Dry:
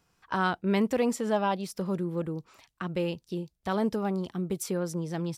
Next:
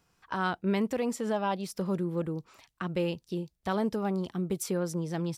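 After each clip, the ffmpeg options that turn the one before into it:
ffmpeg -i in.wav -af "alimiter=limit=-19.5dB:level=0:latency=1:release=396" out.wav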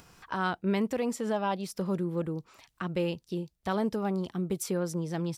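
ffmpeg -i in.wav -af "acompressor=mode=upward:threshold=-44dB:ratio=2.5" out.wav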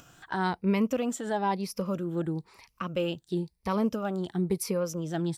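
ffmpeg -i in.wav -af "afftfilt=real='re*pow(10,10/40*sin(2*PI*(0.87*log(max(b,1)*sr/1024/100)/log(2)-(1)*(pts-256)/sr)))':imag='im*pow(10,10/40*sin(2*PI*(0.87*log(max(b,1)*sr/1024/100)/log(2)-(1)*(pts-256)/sr)))':win_size=1024:overlap=0.75" out.wav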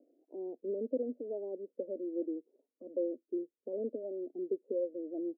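ffmpeg -i in.wav -af "asuperpass=centerf=390:order=12:qfactor=1.1,volume=-3.5dB" out.wav

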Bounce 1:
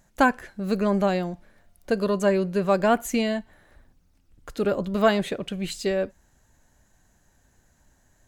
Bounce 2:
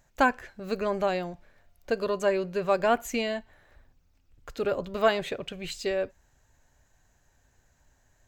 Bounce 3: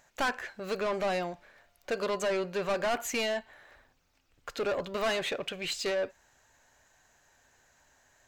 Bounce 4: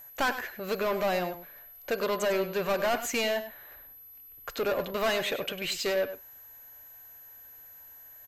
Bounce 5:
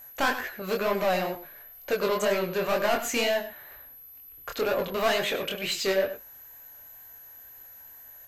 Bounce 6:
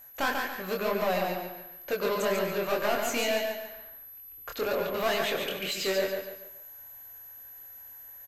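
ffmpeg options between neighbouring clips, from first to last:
ffmpeg -i in.wav -af "equalizer=frequency=200:width_type=o:width=0.33:gain=-11,equalizer=frequency=315:width_type=o:width=0.33:gain=-5,equalizer=frequency=2500:width_type=o:width=0.33:gain=3,equalizer=frequency=10000:width_type=o:width=0.33:gain=-12,volume=-2.5dB" out.wav
ffmpeg -i in.wav -filter_complex "[0:a]asplit=2[link_01][link_02];[link_02]highpass=frequency=720:poles=1,volume=19dB,asoftclip=type=tanh:threshold=-10.5dB[link_03];[link_01][link_03]amix=inputs=2:normalize=0,lowpass=frequency=6600:poles=1,volume=-6dB,asoftclip=type=tanh:threshold=-18.5dB,volume=-6.5dB" out.wav
ffmpeg -i in.wav -filter_complex "[0:a]aeval=exprs='val(0)+0.00398*sin(2*PI*12000*n/s)':channel_layout=same,asplit=2[link_01][link_02];[link_02]adelay=99.13,volume=-11dB,highshelf=frequency=4000:gain=-2.23[link_03];[link_01][link_03]amix=inputs=2:normalize=0,volume=2dB" out.wav
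ffmpeg -i in.wav -af "flanger=delay=19.5:depth=7.2:speed=2.1,volume=5.5dB" out.wav
ffmpeg -i in.wav -af "aecho=1:1:142|284|426|568:0.596|0.208|0.073|0.0255,volume=-3.5dB" out.wav

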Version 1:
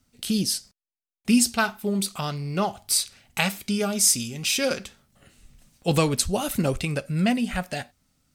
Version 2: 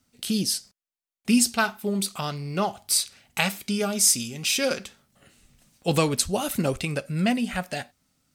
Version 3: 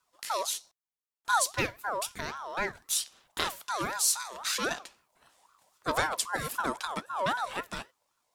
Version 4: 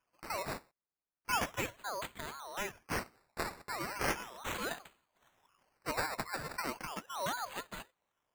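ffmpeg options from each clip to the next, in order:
ffmpeg -i in.wav -af "lowshelf=frequency=73:gain=-11.5" out.wav
ffmpeg -i in.wav -af "aeval=exprs='val(0)*sin(2*PI*1000*n/s+1000*0.25/3.8*sin(2*PI*3.8*n/s))':channel_layout=same,volume=-4dB" out.wav
ffmpeg -i in.wav -af "acrusher=samples=11:mix=1:aa=0.000001:lfo=1:lforange=6.6:lforate=0.36,volume=-7dB" out.wav

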